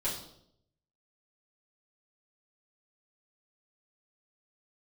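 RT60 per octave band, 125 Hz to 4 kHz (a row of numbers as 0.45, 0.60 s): 1.0, 0.85, 0.80, 0.65, 0.55, 0.60 s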